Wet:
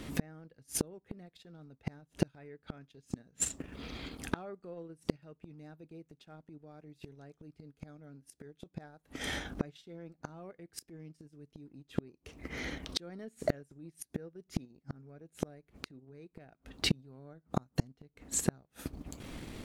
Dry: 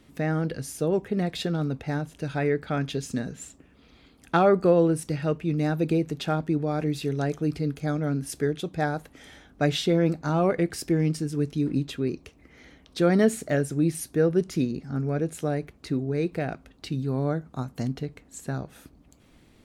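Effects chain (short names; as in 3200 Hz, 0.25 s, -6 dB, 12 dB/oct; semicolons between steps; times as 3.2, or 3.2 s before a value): transient shaper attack -5 dB, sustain -9 dB; flipped gate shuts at -28 dBFS, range -38 dB; gain +13 dB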